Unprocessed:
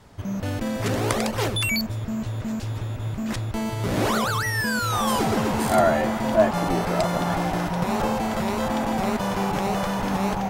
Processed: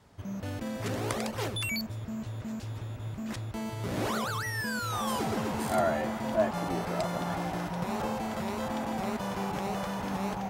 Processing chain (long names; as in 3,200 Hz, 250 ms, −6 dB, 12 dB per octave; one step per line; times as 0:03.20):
high-pass filter 47 Hz
level −8.5 dB